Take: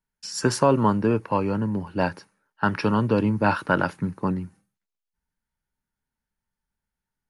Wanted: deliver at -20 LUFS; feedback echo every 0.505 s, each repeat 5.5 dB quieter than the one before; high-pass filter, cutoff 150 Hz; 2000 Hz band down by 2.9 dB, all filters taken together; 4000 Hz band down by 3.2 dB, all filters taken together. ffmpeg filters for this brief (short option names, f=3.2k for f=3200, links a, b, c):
-af "highpass=150,equalizer=f=2k:t=o:g=-4,equalizer=f=4k:t=o:g=-4,aecho=1:1:505|1010|1515|2020|2525|3030|3535:0.531|0.281|0.149|0.079|0.0419|0.0222|0.0118,volume=4.5dB"